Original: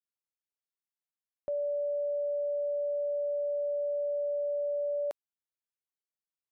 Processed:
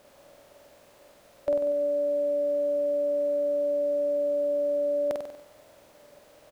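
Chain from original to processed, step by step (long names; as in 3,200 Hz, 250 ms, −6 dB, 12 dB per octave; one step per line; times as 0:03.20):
compressor on every frequency bin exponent 0.4
flutter between parallel walls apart 8.2 metres, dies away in 0.77 s
pitch-shifted copies added −12 semitones −16 dB
level +8 dB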